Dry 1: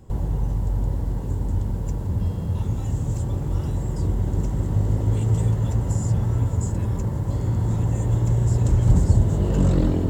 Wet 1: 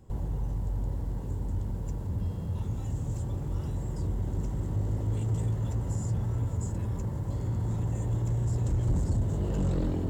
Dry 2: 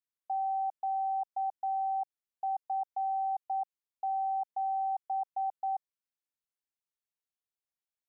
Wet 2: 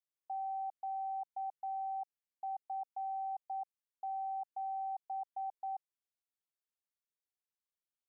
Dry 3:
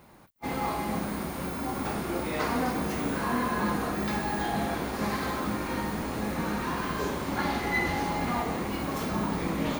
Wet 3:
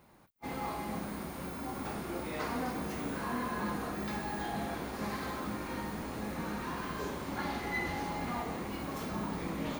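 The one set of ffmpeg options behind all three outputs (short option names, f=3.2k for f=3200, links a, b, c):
-af "asoftclip=type=tanh:threshold=-13.5dB,volume=-7dB"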